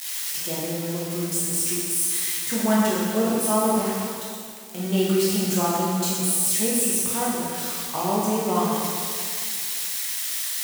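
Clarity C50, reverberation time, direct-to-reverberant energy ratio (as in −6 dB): −2.0 dB, 2.1 s, −7.0 dB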